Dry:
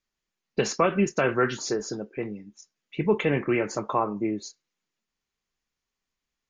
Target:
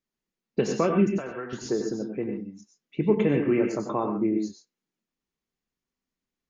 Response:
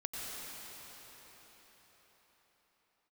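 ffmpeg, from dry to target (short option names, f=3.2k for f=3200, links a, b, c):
-filter_complex "[0:a]equalizer=f=250:t=o:w=2.5:g=11,asettb=1/sr,asplit=3[a][b][c];[a]atrim=end=1.074[d];[b]atrim=start=1.07:end=1.53,asetpts=PTS-STARTPTS,afade=t=in:d=0.004:c=qsin,afade=t=out:st=0.456:d=0.004:c=qsin,acrossover=split=590|1700[e][f][g];[e]acompressor=threshold=-35dB:ratio=4[h];[f]acompressor=threshold=-30dB:ratio=4[i];[g]acompressor=threshold=-43dB:ratio=4[j];[h][i][j]amix=inputs=3:normalize=0[k];[c]atrim=start=1.526[l];[d][k]acrossfade=d=0.004:c1=hsin:c2=qsin[m];[m][l]acrossfade=d=0.004:c1=qsin:c2=hsin[n];[1:a]atrim=start_sample=2205,atrim=end_sample=6174[o];[n][o]afir=irnorm=-1:irlink=0,volume=-4.5dB"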